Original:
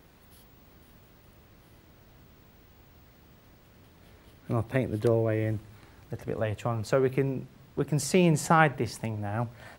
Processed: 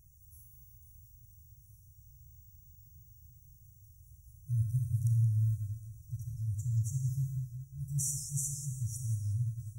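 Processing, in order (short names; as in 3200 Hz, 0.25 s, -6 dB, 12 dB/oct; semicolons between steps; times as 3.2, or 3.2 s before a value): FFT band-reject 140–5600 Hz; Schroeder reverb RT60 1.1 s, combs from 27 ms, DRR 3 dB; warbling echo 0.179 s, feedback 34%, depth 160 cents, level -11.5 dB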